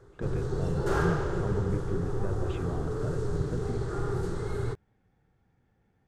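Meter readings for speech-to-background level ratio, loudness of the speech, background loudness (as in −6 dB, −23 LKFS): −4.5 dB, −36.5 LKFS, −32.0 LKFS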